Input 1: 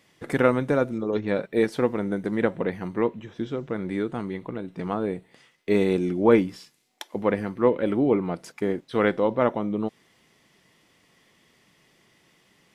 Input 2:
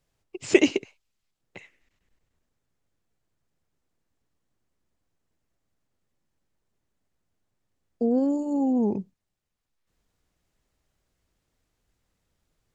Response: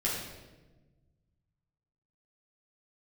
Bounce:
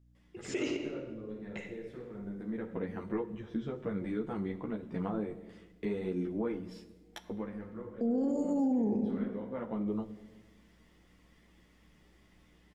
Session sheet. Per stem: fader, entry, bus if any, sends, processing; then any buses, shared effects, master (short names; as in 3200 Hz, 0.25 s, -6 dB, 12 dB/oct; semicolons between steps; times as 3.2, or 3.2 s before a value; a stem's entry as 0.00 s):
-2.0 dB, 0.15 s, send -17.5 dB, high shelf 2700 Hz -8 dB; compressor 6:1, threshold -28 dBFS, peak gain reduction 15 dB; ensemble effect; auto duck -21 dB, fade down 0.85 s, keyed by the second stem
-15.0 dB, 0.00 s, send -8 dB, AGC gain up to 12 dB; hum 60 Hz, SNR 30 dB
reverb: on, RT60 1.2 s, pre-delay 9 ms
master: limiter -24 dBFS, peak gain reduction 11 dB